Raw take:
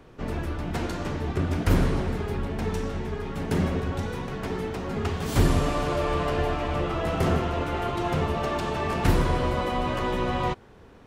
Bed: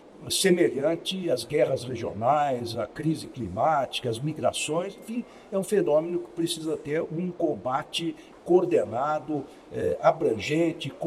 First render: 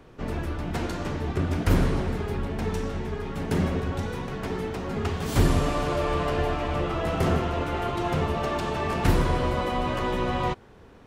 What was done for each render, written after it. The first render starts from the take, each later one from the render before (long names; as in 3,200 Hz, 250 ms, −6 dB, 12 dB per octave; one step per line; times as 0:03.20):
no processing that can be heard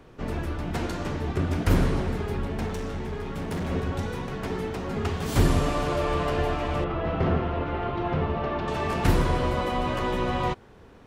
0:02.66–0:03.70: gain into a clipping stage and back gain 27.5 dB
0:06.84–0:08.68: high-frequency loss of the air 290 metres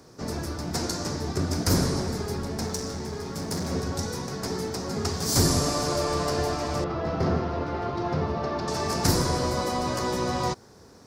high-pass filter 78 Hz
high shelf with overshoot 3,900 Hz +9.5 dB, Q 3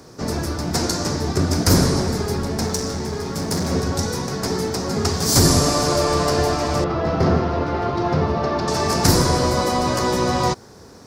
level +7.5 dB
brickwall limiter −3 dBFS, peak gain reduction 2 dB